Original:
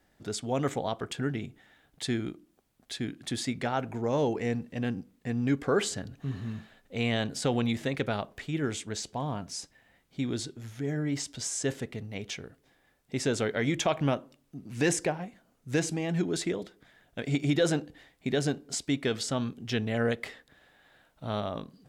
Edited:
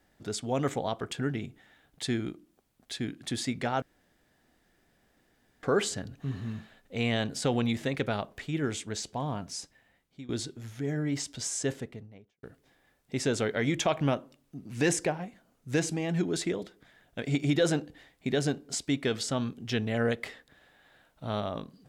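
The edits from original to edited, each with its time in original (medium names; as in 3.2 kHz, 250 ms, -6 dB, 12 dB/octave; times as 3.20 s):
3.82–5.63 s: room tone
9.38–10.29 s: fade out equal-power, to -18 dB
11.56–12.43 s: studio fade out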